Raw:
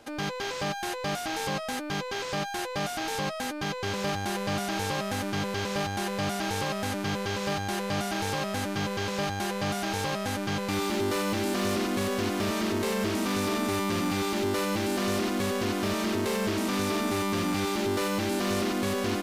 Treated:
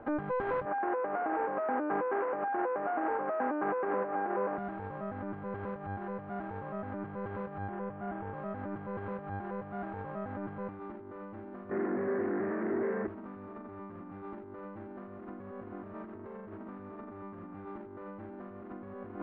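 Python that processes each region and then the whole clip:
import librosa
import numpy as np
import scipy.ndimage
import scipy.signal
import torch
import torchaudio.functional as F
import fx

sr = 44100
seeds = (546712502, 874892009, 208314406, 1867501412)

y = fx.chain(x, sr, fx.cvsd(bps=16000),
    fx.highpass(hz=280.0, slope=24),
    fx.air_absorb(metres=350.0), at=(0.65, 4.58))
y = fx.chain(y, sr, fx.lowpass(hz=2600.0, slope=6),
    fx.resample_bad(factor=6, down='none', up='filtered'), at=(7.69, 8.34))
y = fx.chain(y, sr, fx.clip_hard(threshold_db=-36.5),
    fx.cabinet(low_hz=210.0, low_slope=12, high_hz=2100.0, hz=(380.0, 590.0, 880.0, 1200.0, 1900.0), db=(6, -3, -7, -6, 7)), at=(11.7, 13.08))
y = scipy.signal.sosfilt(scipy.signal.butter(4, 1500.0, 'lowpass', fs=sr, output='sos'), y)
y = fx.over_compress(y, sr, threshold_db=-36.0, ratio=-0.5)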